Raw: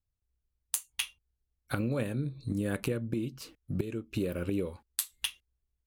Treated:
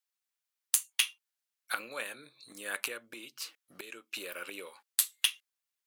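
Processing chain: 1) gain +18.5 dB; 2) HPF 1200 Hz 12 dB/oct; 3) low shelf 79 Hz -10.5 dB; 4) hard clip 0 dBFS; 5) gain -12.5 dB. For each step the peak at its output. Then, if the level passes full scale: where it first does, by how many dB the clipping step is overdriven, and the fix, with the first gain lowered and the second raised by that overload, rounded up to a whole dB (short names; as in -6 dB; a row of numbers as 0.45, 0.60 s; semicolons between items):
+5.5, +5.5, +5.5, 0.0, -12.5 dBFS; step 1, 5.5 dB; step 1 +12.5 dB, step 5 -6.5 dB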